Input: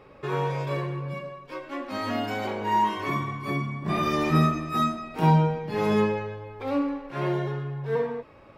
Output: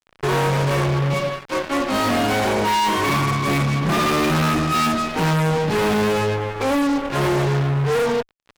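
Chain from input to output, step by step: high shelf 4700 Hz -7 dB; fuzz box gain 37 dB, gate -43 dBFS; gain -4 dB

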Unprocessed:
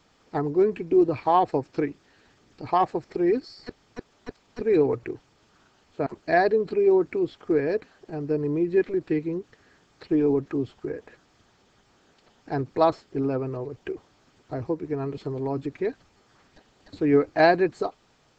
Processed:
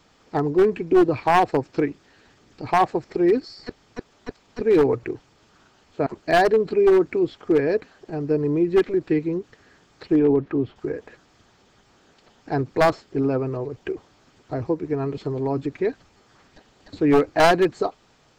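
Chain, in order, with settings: one-sided fold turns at -15 dBFS; 10.19–10.76 LPF 3100 Hz 12 dB/oct; gain +4 dB

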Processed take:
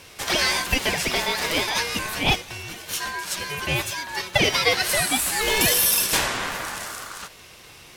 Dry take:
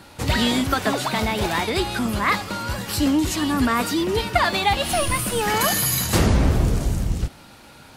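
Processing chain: HPF 1100 Hz 6 dB/oct; ring modulator 1300 Hz; in parallel at -12 dB: soft clip -18.5 dBFS, distortion -16 dB; 2.23–4.39 on the sum: upward expander 1.5:1, over -35 dBFS; gain +4.5 dB

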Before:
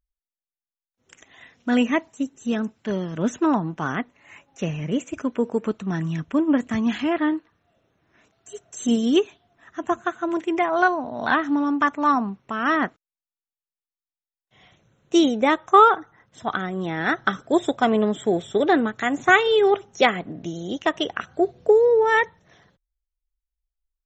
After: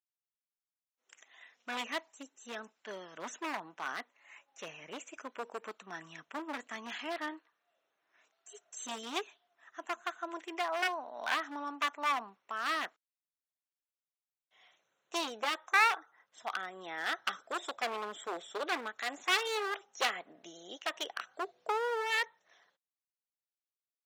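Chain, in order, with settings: one-sided fold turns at -17 dBFS; HPF 700 Hz 12 dB/oct; gain -8.5 dB

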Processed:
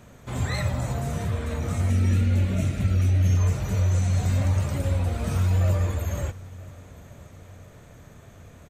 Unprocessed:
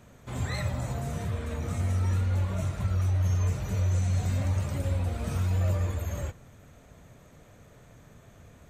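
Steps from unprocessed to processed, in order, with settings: 1.9–3.37 fifteen-band EQ 250 Hz +10 dB, 1000 Hz -12 dB, 2500 Hz +5 dB; on a send: feedback echo 0.971 s, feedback 42%, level -22 dB; on the sum: gain +4.5 dB

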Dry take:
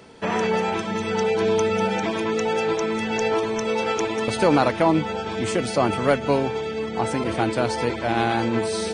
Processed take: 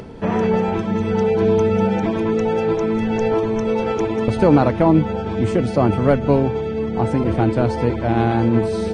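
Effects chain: tilt -3.5 dB/oct; upward compressor, threshold -29 dBFS

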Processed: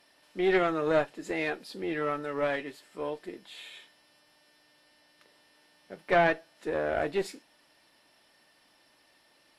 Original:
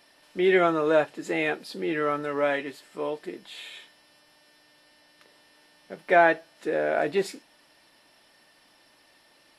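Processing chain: tube stage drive 12 dB, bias 0.75

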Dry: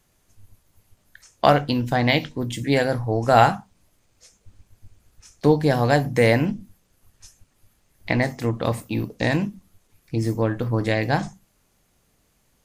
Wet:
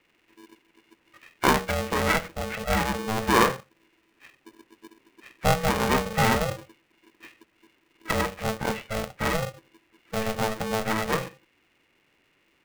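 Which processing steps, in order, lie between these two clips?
nonlinear frequency compression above 1500 Hz 4:1; polarity switched at an audio rate 330 Hz; gain -5 dB

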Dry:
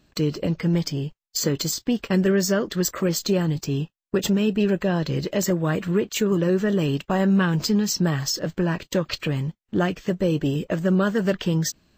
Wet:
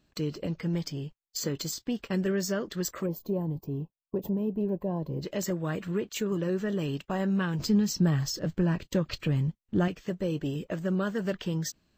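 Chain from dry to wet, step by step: 3.06–5.22 spectral gain 1100–11000 Hz -20 dB; 7.59–9.88 low shelf 250 Hz +10 dB; gain -8.5 dB

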